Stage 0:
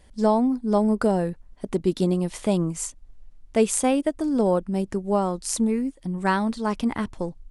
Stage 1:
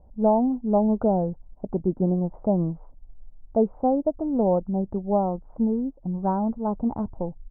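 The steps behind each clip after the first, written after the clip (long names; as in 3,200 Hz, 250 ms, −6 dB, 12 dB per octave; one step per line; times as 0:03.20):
Butterworth low-pass 960 Hz 36 dB per octave
comb filter 1.4 ms, depth 30%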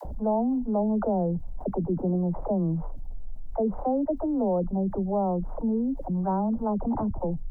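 all-pass dispersion lows, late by 52 ms, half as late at 420 Hz
envelope flattener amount 70%
level −7 dB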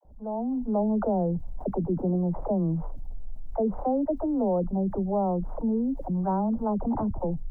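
fade in at the beginning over 0.72 s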